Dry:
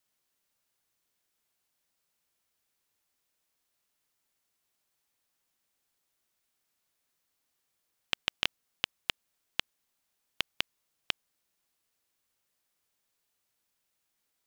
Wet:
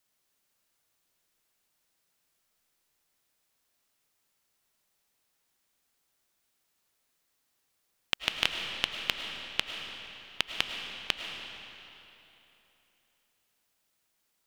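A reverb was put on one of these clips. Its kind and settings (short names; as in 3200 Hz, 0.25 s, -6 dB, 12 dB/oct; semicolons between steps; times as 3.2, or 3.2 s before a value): digital reverb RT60 3.2 s, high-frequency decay 0.85×, pre-delay 65 ms, DRR 3.5 dB; gain +2.5 dB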